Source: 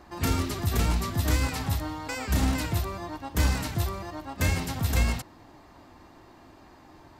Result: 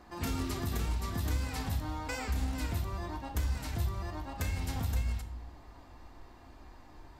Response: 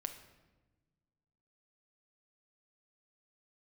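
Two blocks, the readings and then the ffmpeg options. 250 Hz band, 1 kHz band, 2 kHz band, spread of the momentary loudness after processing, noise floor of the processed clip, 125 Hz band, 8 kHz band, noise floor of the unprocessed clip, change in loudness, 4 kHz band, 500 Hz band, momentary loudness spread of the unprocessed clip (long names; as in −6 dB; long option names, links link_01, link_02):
−8.0 dB, −7.0 dB, −9.0 dB, 21 LU, −54 dBFS, −6.5 dB, −9.5 dB, −53 dBFS, −7.0 dB, −9.0 dB, −8.0 dB, 8 LU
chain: -filter_complex "[0:a]asubboost=boost=4.5:cutoff=76,acompressor=threshold=-26dB:ratio=6[link_01];[1:a]atrim=start_sample=2205,asetrate=66150,aresample=44100[link_02];[link_01][link_02]afir=irnorm=-1:irlink=0,volume=1.5dB"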